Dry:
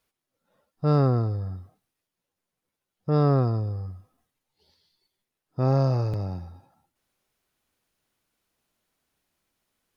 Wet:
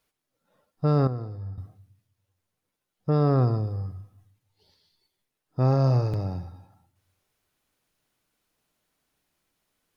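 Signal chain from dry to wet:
rectangular room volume 1,000 cubic metres, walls furnished, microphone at 0.44 metres
brickwall limiter −15.5 dBFS, peak gain reduction 4.5 dB
0:01.07–0:01.58: tuned comb filter 99 Hz, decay 1.6 s, harmonics odd, mix 70%
level +1 dB

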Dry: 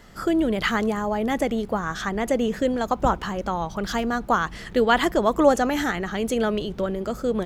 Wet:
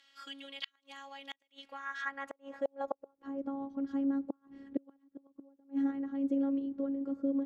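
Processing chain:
phases set to zero 275 Hz
gate with flip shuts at −11 dBFS, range −36 dB
band-pass filter sweep 3,200 Hz → 300 Hz, 0:01.53–0:03.44
level −1.5 dB

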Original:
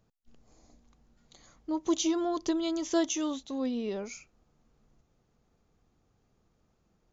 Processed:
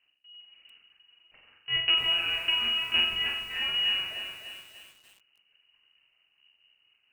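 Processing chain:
each half-wave held at its own peak
mains-hum notches 50/100/150/200/250 Hz
transient designer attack +3 dB, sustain −4 dB
tuned comb filter 72 Hz, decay 0.28 s, harmonics odd, mix 90%
linear-prediction vocoder at 8 kHz pitch kept
on a send: flutter between parallel walls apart 7.6 metres, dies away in 0.57 s
on the sum: voice inversion scrambler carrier 2,900 Hz
feedback echo at a low word length 296 ms, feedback 55%, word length 9 bits, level −6 dB
level +4.5 dB

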